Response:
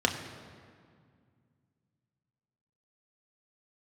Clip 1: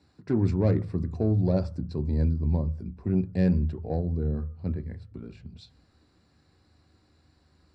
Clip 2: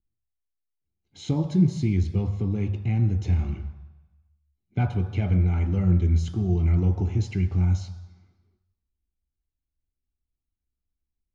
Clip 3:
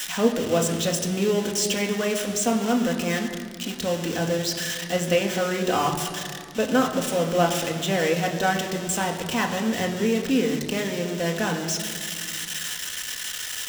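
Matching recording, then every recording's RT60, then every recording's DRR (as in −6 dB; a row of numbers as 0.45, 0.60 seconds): 3; 0.45, 1.1, 2.1 seconds; 9.5, 5.0, 2.0 decibels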